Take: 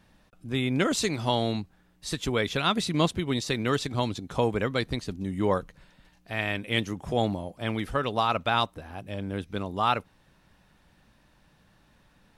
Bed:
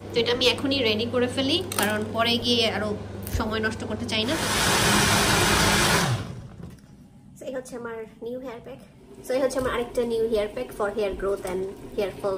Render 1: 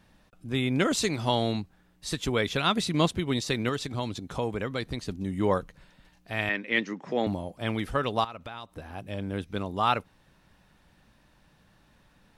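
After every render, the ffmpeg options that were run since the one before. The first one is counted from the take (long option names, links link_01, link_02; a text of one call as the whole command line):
ffmpeg -i in.wav -filter_complex "[0:a]asettb=1/sr,asplit=3[link_01][link_02][link_03];[link_01]atrim=end=3.694[link_04];[link_02]atrim=start=3.69:end=5.02,asetpts=PTS-STARTPTS,afade=type=in:duration=0.004:curve=qsin,afade=type=out:start_time=1.326:duration=0.004:curve=qsin,acompressor=threshold=-33dB:ratio=1.5:attack=3.2:release=140:knee=1:detection=peak[link_05];[link_03]atrim=start=5.016[link_06];[link_04][link_05]acrossfade=duration=0.004:curve1=hsin:curve2=qsin[link_07];[link_07][link_06]acrossfade=duration=0.004:curve1=qsin:curve2=hsin,asettb=1/sr,asplit=3[link_08][link_09][link_10];[link_08]atrim=end=6.494[link_11];[link_09]atrim=start=6.49:end=7.27,asetpts=PTS-STARTPTS,afade=type=in:duration=0.004:curve=qsin,afade=type=out:start_time=0.776:duration=0.004:curve=qsin,highpass=frequency=190:width=0.5412,highpass=frequency=190:width=1.3066,equalizer=frequency=720:width_type=q:width=4:gain=-5,equalizer=frequency=1900:width_type=q:width=4:gain=7,equalizer=frequency=3300:width_type=q:width=4:gain=-6,lowpass=frequency=5600:width=0.5412,lowpass=frequency=5600:width=1.3066[link_12];[link_10]atrim=start=7.266[link_13];[link_11][link_12]acrossfade=duration=0.004:curve1=hsin:curve2=qsin[link_14];[link_14][link_13]acrossfade=duration=0.004:curve1=qsin:curve2=hsin,asettb=1/sr,asplit=3[link_15][link_16][link_17];[link_15]atrim=end=8.244[link_18];[link_16]atrim=start=8.24:end=8.77,asetpts=PTS-STARTPTS,afade=type=in:duration=0.004:curve=qsin,afade=type=out:start_time=0.526:duration=0.004:curve=qsin,acompressor=threshold=-37dB:ratio=6:attack=3.2:release=140:knee=1:detection=peak[link_19];[link_17]atrim=start=8.766[link_20];[link_18][link_19]acrossfade=duration=0.004:curve1=hsin:curve2=qsin[link_21];[link_21][link_20]acrossfade=duration=0.004:curve1=qsin:curve2=hsin" out.wav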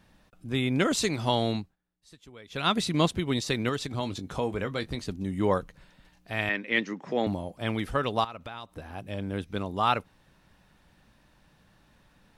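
ffmpeg -i in.wav -filter_complex "[0:a]asettb=1/sr,asplit=3[link_01][link_02][link_03];[link_01]atrim=end=3.984[link_04];[link_02]atrim=start=3.98:end=5.06,asetpts=PTS-STARTPTS,afade=type=in:duration=0.004:curve=qsin,afade=type=out:start_time=1.076:duration=0.004:curve=qsin,asplit=2[link_05][link_06];[link_06]adelay=21,volume=-10.5dB[link_07];[link_05][link_07]amix=inputs=2:normalize=0,atrim=end_sample=47628[link_08];[link_03]atrim=start=5.056[link_09];[link_04][link_08]acrossfade=duration=0.004:curve1=hsin:curve2=qsin[link_10];[link_10][link_09]acrossfade=duration=0.004:curve1=qsin:curve2=hsin,asplit=3[link_11][link_12][link_13];[link_11]atrim=end=1.76,asetpts=PTS-STARTPTS,afade=type=out:start_time=1.56:duration=0.2:silence=0.0794328[link_14];[link_12]atrim=start=1.76:end=2.48,asetpts=PTS-STARTPTS,volume=-22dB[link_15];[link_13]atrim=start=2.48,asetpts=PTS-STARTPTS,afade=type=in:duration=0.2:silence=0.0794328[link_16];[link_14][link_15][link_16]concat=n=3:v=0:a=1" out.wav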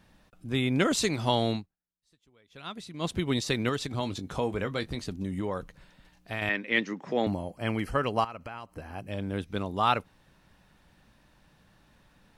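ffmpeg -i in.wav -filter_complex "[0:a]asettb=1/sr,asplit=3[link_01][link_02][link_03];[link_01]atrim=end=4.884[link_04];[link_02]atrim=start=4.88:end=6.42,asetpts=PTS-STARTPTS,afade=type=in:duration=0.004:curve=qsin,afade=type=out:start_time=1.536:duration=0.004:curve=qsin,acompressor=threshold=-27dB:ratio=6:attack=3.2:release=140:knee=1:detection=peak[link_05];[link_03]atrim=start=6.416[link_06];[link_04][link_05]acrossfade=duration=0.004:curve1=hsin:curve2=qsin[link_07];[link_07][link_06]acrossfade=duration=0.004:curve1=qsin:curve2=hsin,asettb=1/sr,asplit=3[link_08][link_09][link_10];[link_08]atrim=end=7.304[link_11];[link_09]atrim=start=7.3:end=9.12,asetpts=PTS-STARTPTS,afade=type=in:duration=0.004:curve=qsin,afade=type=out:start_time=1.816:duration=0.004:curve=qsin,asuperstop=centerf=3600:order=8:qfactor=5[link_12];[link_10]atrim=start=9.116[link_13];[link_11][link_12]acrossfade=duration=0.004:curve1=hsin:curve2=qsin[link_14];[link_14][link_13]acrossfade=duration=0.004:curve1=qsin:curve2=hsin,asplit=3[link_15][link_16][link_17];[link_15]atrim=end=1.67,asetpts=PTS-STARTPTS,afade=type=out:start_time=1.53:duration=0.14:silence=0.188365[link_18];[link_16]atrim=start=1.67:end=3,asetpts=PTS-STARTPTS,volume=-14.5dB[link_19];[link_17]atrim=start=3,asetpts=PTS-STARTPTS,afade=type=in:duration=0.14:silence=0.188365[link_20];[link_18][link_19][link_20]concat=n=3:v=0:a=1" out.wav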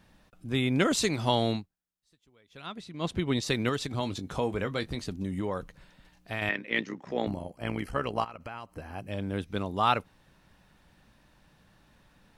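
ffmpeg -i in.wav -filter_complex "[0:a]asettb=1/sr,asplit=3[link_01][link_02][link_03];[link_01]atrim=end=2.664[link_04];[link_02]atrim=start=2.66:end=3.43,asetpts=PTS-STARTPTS,afade=type=in:duration=0.004:curve=qsin,afade=type=out:start_time=0.766:duration=0.004:curve=qsin,highshelf=frequency=6800:gain=-10[link_05];[link_03]atrim=start=3.426[link_06];[link_04][link_05]acrossfade=duration=0.004:curve1=hsin:curve2=qsin[link_07];[link_07][link_06]acrossfade=duration=0.004:curve1=qsin:curve2=hsin,asettb=1/sr,asplit=3[link_08][link_09][link_10];[link_08]atrim=end=6.514[link_11];[link_09]atrim=start=6.51:end=8.4,asetpts=PTS-STARTPTS,afade=type=in:duration=0.004:curve=qsin,afade=type=out:start_time=1.886:duration=0.004:curve=qsin,tremolo=f=64:d=0.71[link_12];[link_10]atrim=start=8.396[link_13];[link_11][link_12]acrossfade=duration=0.004:curve1=hsin:curve2=qsin[link_14];[link_14][link_13]acrossfade=duration=0.004:curve1=qsin:curve2=hsin" out.wav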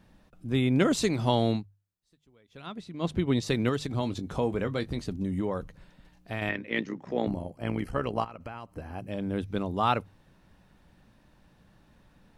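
ffmpeg -i in.wav -af "tiltshelf=frequency=770:gain=3.5,bandreject=frequency=50:width_type=h:width=6,bandreject=frequency=100:width_type=h:width=6,bandreject=frequency=150:width_type=h:width=6" out.wav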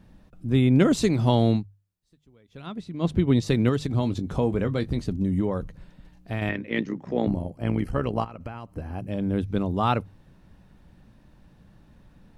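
ffmpeg -i in.wav -af "lowshelf=frequency=370:gain=8" out.wav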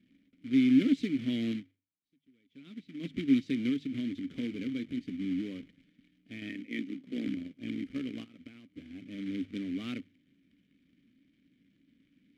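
ffmpeg -i in.wav -filter_complex "[0:a]acrusher=bits=2:mode=log:mix=0:aa=0.000001,asplit=3[link_01][link_02][link_03];[link_01]bandpass=frequency=270:width_type=q:width=8,volume=0dB[link_04];[link_02]bandpass=frequency=2290:width_type=q:width=8,volume=-6dB[link_05];[link_03]bandpass=frequency=3010:width_type=q:width=8,volume=-9dB[link_06];[link_04][link_05][link_06]amix=inputs=3:normalize=0" out.wav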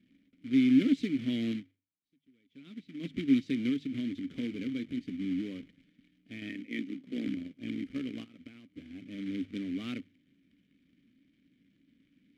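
ffmpeg -i in.wav -af anull out.wav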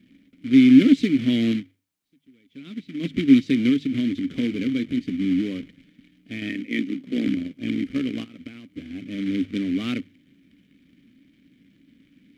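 ffmpeg -i in.wav -af "volume=11dB" out.wav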